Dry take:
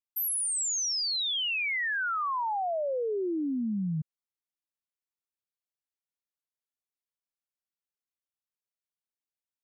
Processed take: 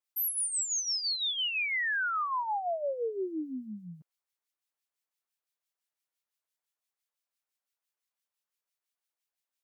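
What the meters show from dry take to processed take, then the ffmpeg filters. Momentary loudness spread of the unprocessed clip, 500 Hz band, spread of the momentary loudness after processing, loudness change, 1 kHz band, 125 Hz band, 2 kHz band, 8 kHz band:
4 LU, -2.5 dB, 11 LU, -1.5 dB, -1.5 dB, -15.0 dB, -0.5 dB, -2.0 dB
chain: -filter_complex "[0:a]highpass=530,acrossover=split=1700[a][b];[a]aeval=exprs='val(0)*(1-0.7/2+0.7/2*cos(2*PI*5.9*n/s))':c=same[c];[b]aeval=exprs='val(0)*(1-0.7/2-0.7/2*cos(2*PI*5.9*n/s))':c=same[d];[c][d]amix=inputs=2:normalize=0,alimiter=level_in=11dB:limit=-24dB:level=0:latency=1:release=365,volume=-11dB,volume=8dB"

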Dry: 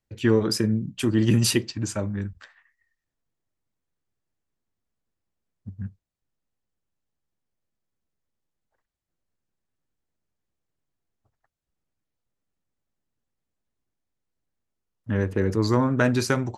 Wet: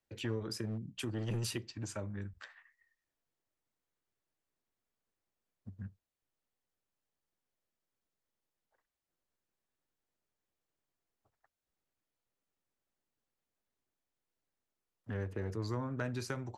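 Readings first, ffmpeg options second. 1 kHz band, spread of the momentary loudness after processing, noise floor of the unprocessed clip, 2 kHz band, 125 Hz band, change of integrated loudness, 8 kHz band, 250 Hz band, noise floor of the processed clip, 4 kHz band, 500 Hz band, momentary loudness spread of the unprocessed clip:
-15.5 dB, 15 LU, -84 dBFS, -15.0 dB, -13.5 dB, -16.5 dB, -15.5 dB, -18.0 dB, under -85 dBFS, -14.5 dB, -16.5 dB, 16 LU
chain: -filter_complex "[0:a]acrossover=split=130[a][b];[b]acompressor=threshold=-41dB:ratio=2.5[c];[a][c]amix=inputs=2:normalize=0,aeval=exprs='clip(val(0),-1,0.0596)':c=same,bass=f=250:g=-9,treble=f=4k:g=-2,volume=-1.5dB"

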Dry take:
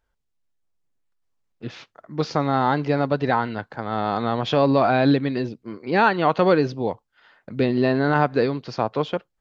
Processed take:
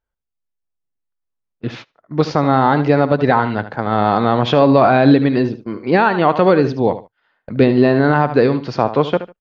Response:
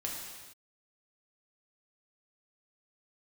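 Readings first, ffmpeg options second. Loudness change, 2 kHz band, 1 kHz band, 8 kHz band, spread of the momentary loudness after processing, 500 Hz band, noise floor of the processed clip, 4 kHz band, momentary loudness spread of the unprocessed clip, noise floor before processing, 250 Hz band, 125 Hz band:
+7.0 dB, +5.0 dB, +6.5 dB, n/a, 13 LU, +7.0 dB, -79 dBFS, +4.5 dB, 15 LU, -75 dBFS, +7.5 dB, +7.5 dB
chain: -af "aecho=1:1:75|150:0.224|0.0448,alimiter=limit=-10dB:level=0:latency=1:release=177,agate=range=-17dB:threshold=-40dB:ratio=16:detection=peak,highshelf=f=4.6k:g=-9.5,volume=9dB"

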